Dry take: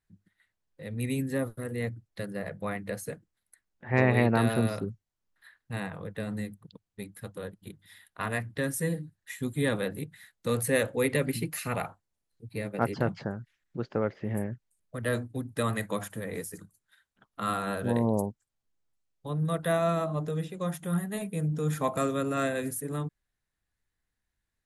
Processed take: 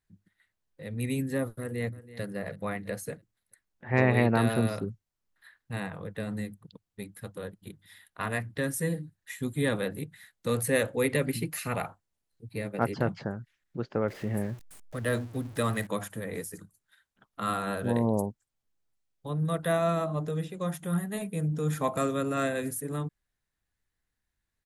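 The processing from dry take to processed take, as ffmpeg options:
ffmpeg -i in.wav -filter_complex "[0:a]asplit=2[link_01][link_02];[link_02]afade=type=in:start_time=1.59:duration=0.01,afade=type=out:start_time=2.22:duration=0.01,aecho=0:1:330|660|990|1320:0.158489|0.0633957|0.0253583|0.0101433[link_03];[link_01][link_03]amix=inputs=2:normalize=0,asettb=1/sr,asplit=3[link_04][link_05][link_06];[link_04]atrim=end=14.084[link_07];[link_05]atrim=start=14.08:end=15.87,asetpts=PTS-STARTPTS,afade=type=in:duration=0.004:curve=qsin,afade=type=out:start_time=1.786:duration=0.004:curve=qsin,aeval=exprs='val(0)+0.5*0.00668*sgn(val(0))':channel_layout=same[link_08];[link_06]atrim=start=15.866[link_09];[link_07][link_08]acrossfade=duration=0.004:curve1=hsin:curve2=qsin[link_10];[link_10][link_09]acrossfade=duration=0.004:curve1=qsin:curve2=hsin" out.wav

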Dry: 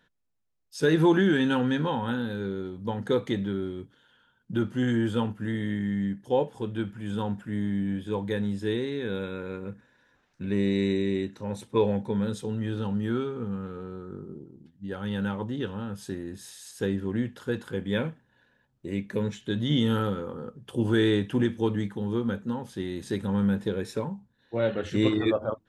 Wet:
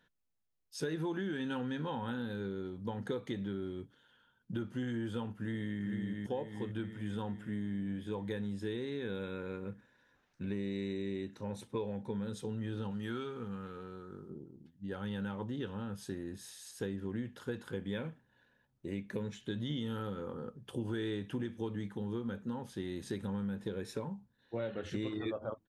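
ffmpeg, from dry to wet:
ffmpeg -i in.wav -filter_complex "[0:a]asplit=2[link_01][link_02];[link_02]afade=type=in:start_time=5.34:duration=0.01,afade=type=out:start_time=5.81:duration=0.01,aecho=0:1:450|900|1350|1800|2250|2700|3150|3600|4050:0.668344|0.401006|0.240604|0.144362|0.0866174|0.0519704|0.0311823|0.0187094|0.0112256[link_03];[link_01][link_03]amix=inputs=2:normalize=0,asettb=1/sr,asplit=3[link_04][link_05][link_06];[link_04]atrim=end=12.914[link_07];[link_05]atrim=start=12.91:end=14.3,asetpts=PTS-STARTPTS,afade=type=in:duration=0.004:curve=qsin,afade=type=out:start_time=1.386:duration=0.004:curve=qsin,tiltshelf=frequency=970:gain=-5[link_08];[link_06]atrim=start=14.296[link_09];[link_07][link_08]acrossfade=duration=0.004:curve1=hsin:curve2=qsin[link_10];[link_10][link_09]acrossfade=duration=0.004:curve1=qsin:curve2=hsin,acompressor=threshold=-29dB:ratio=6,bandreject=frequency=7600:width=20,volume=-5dB" out.wav

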